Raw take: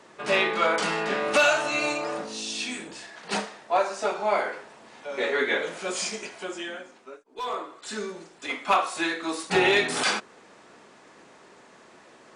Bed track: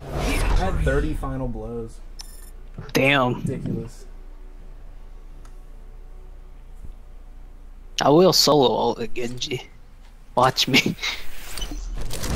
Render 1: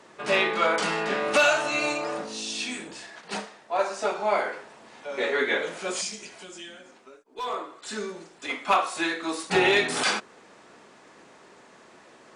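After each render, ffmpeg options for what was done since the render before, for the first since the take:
ffmpeg -i in.wav -filter_complex "[0:a]asettb=1/sr,asplit=3[link_01][link_02][link_03];[link_01]atrim=end=6.014[link_04];[link_02]atrim=start=6.01:end=7.25,asetpts=PTS-STARTPTS,afade=type=in:duration=0.004:curve=qsin,afade=type=out:start_time=1.236:duration=0.004:curve=qsin,acrossover=split=210|3000[link_05][link_06][link_07];[link_06]acompressor=threshold=-45dB:ratio=6:attack=3.2:release=140:knee=2.83:detection=peak[link_08];[link_05][link_08][link_07]amix=inputs=3:normalize=0[link_09];[link_03]atrim=start=7.246[link_10];[link_04][link_09]acrossfade=duration=0.004:curve1=hsin:curve2=qsin[link_11];[link_11][link_10]acrossfade=duration=0.004:curve1=qsin:curve2=hsin,asplit=3[link_12][link_13][link_14];[link_12]atrim=end=3.212[link_15];[link_13]atrim=start=3.208:end=3.792,asetpts=PTS-STARTPTS,volume=-4.5dB[link_16];[link_14]atrim=start=3.788[link_17];[link_15][link_16]acrossfade=duration=0.004:curve1=hsin:curve2=hsin[link_18];[link_18][link_17]acrossfade=duration=0.004:curve1=hsin:curve2=hsin" out.wav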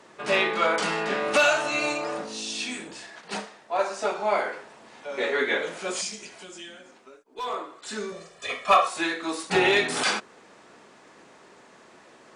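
ffmpeg -i in.wav -filter_complex "[0:a]asettb=1/sr,asplit=3[link_01][link_02][link_03];[link_01]atrim=end=8.124[link_04];[link_02]atrim=start=8.12:end=8.88,asetpts=PTS-STARTPTS,afade=type=in:duration=0.004:curve=qsin,afade=type=out:start_time=0.756:duration=0.004:curve=qsin,aecho=1:1:1.7:0.95,atrim=end_sample=33516[link_05];[link_03]atrim=start=8.876[link_06];[link_04][link_05]acrossfade=duration=0.004:curve1=hsin:curve2=qsin[link_07];[link_07][link_06]acrossfade=duration=0.004:curve1=qsin:curve2=hsin" out.wav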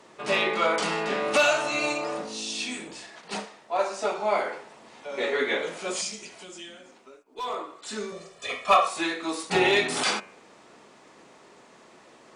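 ffmpeg -i in.wav -af "equalizer=frequency=1600:width_type=o:width=0.31:gain=-4.5,bandreject=frequency=95.57:width_type=h:width=4,bandreject=frequency=191.14:width_type=h:width=4,bandreject=frequency=286.71:width_type=h:width=4,bandreject=frequency=382.28:width_type=h:width=4,bandreject=frequency=477.85:width_type=h:width=4,bandreject=frequency=573.42:width_type=h:width=4,bandreject=frequency=668.99:width_type=h:width=4,bandreject=frequency=764.56:width_type=h:width=4,bandreject=frequency=860.13:width_type=h:width=4,bandreject=frequency=955.7:width_type=h:width=4,bandreject=frequency=1051.27:width_type=h:width=4,bandreject=frequency=1146.84:width_type=h:width=4,bandreject=frequency=1242.41:width_type=h:width=4,bandreject=frequency=1337.98:width_type=h:width=4,bandreject=frequency=1433.55:width_type=h:width=4,bandreject=frequency=1529.12:width_type=h:width=4,bandreject=frequency=1624.69:width_type=h:width=4,bandreject=frequency=1720.26:width_type=h:width=4,bandreject=frequency=1815.83:width_type=h:width=4,bandreject=frequency=1911.4:width_type=h:width=4,bandreject=frequency=2006.97:width_type=h:width=4,bandreject=frequency=2102.54:width_type=h:width=4,bandreject=frequency=2198.11:width_type=h:width=4,bandreject=frequency=2293.68:width_type=h:width=4,bandreject=frequency=2389.25:width_type=h:width=4,bandreject=frequency=2484.82:width_type=h:width=4,bandreject=frequency=2580.39:width_type=h:width=4,bandreject=frequency=2675.96:width_type=h:width=4,bandreject=frequency=2771.53:width_type=h:width=4,bandreject=frequency=2867.1:width_type=h:width=4,bandreject=frequency=2962.67:width_type=h:width=4" out.wav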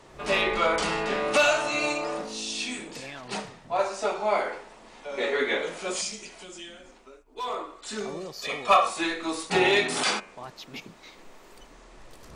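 ffmpeg -i in.wav -i bed.wav -filter_complex "[1:a]volume=-24dB[link_01];[0:a][link_01]amix=inputs=2:normalize=0" out.wav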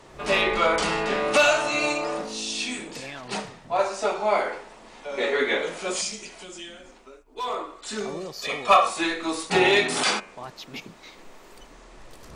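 ffmpeg -i in.wav -af "volume=2.5dB" out.wav

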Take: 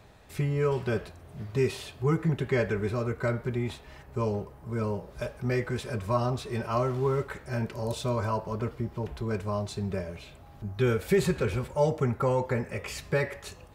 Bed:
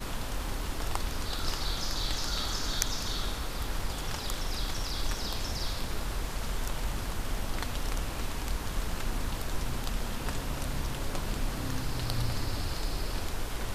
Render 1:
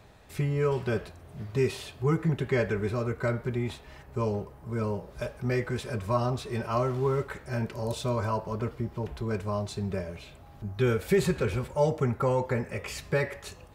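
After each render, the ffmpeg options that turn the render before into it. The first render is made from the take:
ffmpeg -i in.wav -af anull out.wav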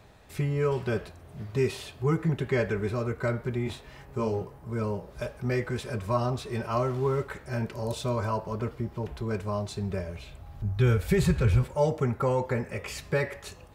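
ffmpeg -i in.wav -filter_complex "[0:a]asettb=1/sr,asplit=3[link_01][link_02][link_03];[link_01]atrim=end=3.644[link_04];[link_02]atrim=start=3.64:end=4.58,asetpts=PTS-STARTPTS,afade=type=in:duration=0.004:curve=qsin,afade=type=out:start_time=0.936:duration=0.004:curve=qsin,asplit=2[link_05][link_06];[link_06]adelay=22,volume=-5dB[link_07];[link_05][link_07]amix=inputs=2:normalize=0,atrim=end_sample=41454[link_08];[link_03]atrim=start=4.576[link_09];[link_04][link_08]acrossfade=duration=0.004:curve1=hsin:curve2=qsin[link_10];[link_10][link_09]acrossfade=duration=0.004:curve1=qsin:curve2=hsin,asettb=1/sr,asplit=3[link_11][link_12][link_13];[link_11]atrim=end=9.724[link_14];[link_12]atrim=start=9.72:end=11.63,asetpts=PTS-STARTPTS,afade=type=in:duration=0.004:curve=qsin,afade=type=out:start_time=1.906:duration=0.004:curve=qsin,asubboost=boost=9.5:cutoff=130[link_15];[link_13]atrim=start=11.626[link_16];[link_14][link_15]acrossfade=duration=0.004:curve1=hsin:curve2=qsin[link_17];[link_17][link_16]acrossfade=duration=0.004:curve1=qsin:curve2=hsin" out.wav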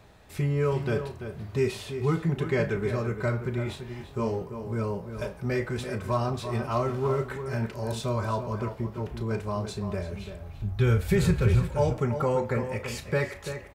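ffmpeg -i in.wav -filter_complex "[0:a]asplit=2[link_01][link_02];[link_02]adelay=35,volume=-11.5dB[link_03];[link_01][link_03]amix=inputs=2:normalize=0,asplit=2[link_04][link_05];[link_05]adelay=338.2,volume=-9dB,highshelf=frequency=4000:gain=-7.61[link_06];[link_04][link_06]amix=inputs=2:normalize=0" out.wav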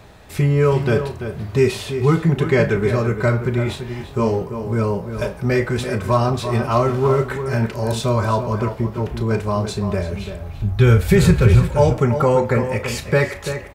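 ffmpeg -i in.wav -af "volume=10dB,alimiter=limit=-2dB:level=0:latency=1" out.wav

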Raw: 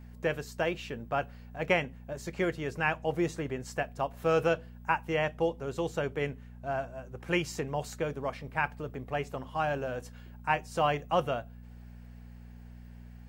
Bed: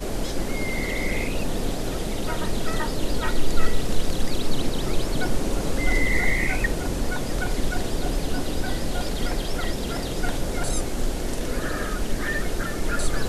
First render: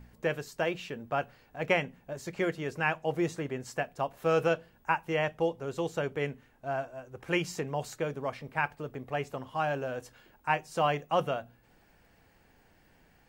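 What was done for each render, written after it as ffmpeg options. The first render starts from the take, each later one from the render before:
ffmpeg -i in.wav -af "bandreject=frequency=60:width_type=h:width=4,bandreject=frequency=120:width_type=h:width=4,bandreject=frequency=180:width_type=h:width=4,bandreject=frequency=240:width_type=h:width=4" out.wav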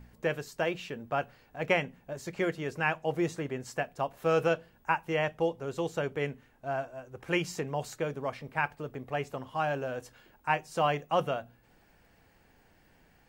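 ffmpeg -i in.wav -af anull out.wav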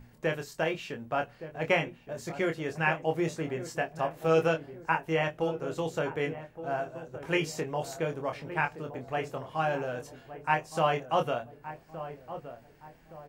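ffmpeg -i in.wav -filter_complex "[0:a]asplit=2[link_01][link_02];[link_02]adelay=25,volume=-5.5dB[link_03];[link_01][link_03]amix=inputs=2:normalize=0,asplit=2[link_04][link_05];[link_05]adelay=1168,lowpass=frequency=870:poles=1,volume=-11dB,asplit=2[link_06][link_07];[link_07]adelay=1168,lowpass=frequency=870:poles=1,volume=0.48,asplit=2[link_08][link_09];[link_09]adelay=1168,lowpass=frequency=870:poles=1,volume=0.48,asplit=2[link_10][link_11];[link_11]adelay=1168,lowpass=frequency=870:poles=1,volume=0.48,asplit=2[link_12][link_13];[link_13]adelay=1168,lowpass=frequency=870:poles=1,volume=0.48[link_14];[link_04][link_06][link_08][link_10][link_12][link_14]amix=inputs=6:normalize=0" out.wav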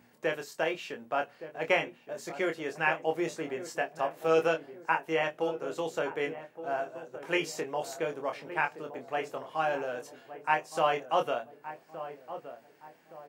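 ffmpeg -i in.wav -af "highpass=290" out.wav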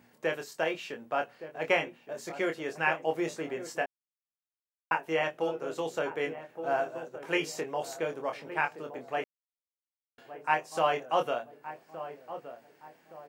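ffmpeg -i in.wav -filter_complex "[0:a]asplit=7[link_01][link_02][link_03][link_04][link_05][link_06][link_07];[link_01]atrim=end=3.86,asetpts=PTS-STARTPTS,afade=type=out:start_time=3.856:duration=0.004:curve=hsin[link_08];[link_02]atrim=start=3.86:end=4.91,asetpts=PTS-STARTPTS,volume=0[link_09];[link_03]atrim=start=4.91:end=6.492,asetpts=PTS-STARTPTS,afade=type=in:duration=0.004:curve=hsin[link_10];[link_04]atrim=start=6.488:end=7.092,asetpts=PTS-STARTPTS,volume=3.5dB[link_11];[link_05]atrim=start=7.088:end=9.24,asetpts=PTS-STARTPTS,afade=type=out:start_time=2.148:duration=0.004:curve=hsin[link_12];[link_06]atrim=start=9.24:end=10.18,asetpts=PTS-STARTPTS,volume=0[link_13];[link_07]atrim=start=10.18,asetpts=PTS-STARTPTS,afade=type=in:duration=0.004:curve=hsin[link_14];[link_08][link_09][link_10]concat=n=3:v=0:a=1[link_15];[link_15][link_11]acrossfade=duration=0.004:curve1=hsin:curve2=hsin[link_16];[link_12][link_13][link_14]concat=n=3:v=0:a=1[link_17];[link_16][link_17]acrossfade=duration=0.004:curve1=hsin:curve2=hsin" out.wav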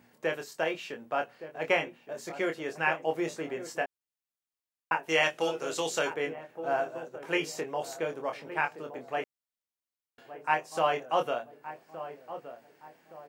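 ffmpeg -i in.wav -filter_complex "[0:a]asplit=3[link_01][link_02][link_03];[link_01]afade=type=out:start_time=5.08:duration=0.02[link_04];[link_02]equalizer=frequency=6600:width=0.33:gain=14,afade=type=in:start_time=5.08:duration=0.02,afade=type=out:start_time=6.13:duration=0.02[link_05];[link_03]afade=type=in:start_time=6.13:duration=0.02[link_06];[link_04][link_05][link_06]amix=inputs=3:normalize=0" out.wav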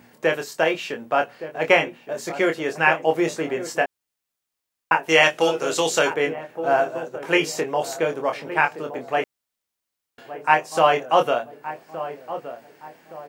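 ffmpeg -i in.wav -af "volume=10dB" out.wav

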